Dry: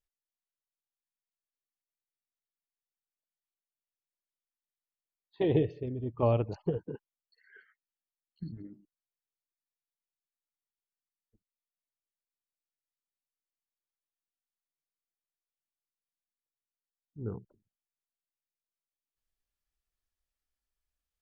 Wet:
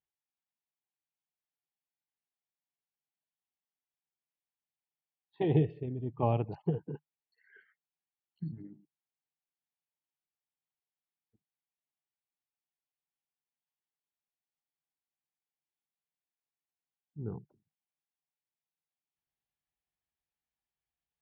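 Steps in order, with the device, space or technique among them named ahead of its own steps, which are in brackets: guitar cabinet (speaker cabinet 89–3500 Hz, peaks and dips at 150 Hz +8 dB, 550 Hz -6 dB, 790 Hz +7 dB, 1300 Hz -5 dB); gain -2 dB

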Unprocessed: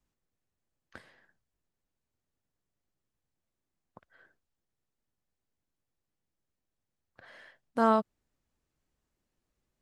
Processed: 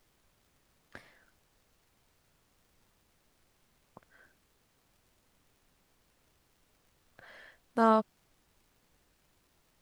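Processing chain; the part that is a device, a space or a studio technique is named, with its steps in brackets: warped LP (record warp 33 1/3 rpm, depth 160 cents; crackle; pink noise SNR 31 dB)

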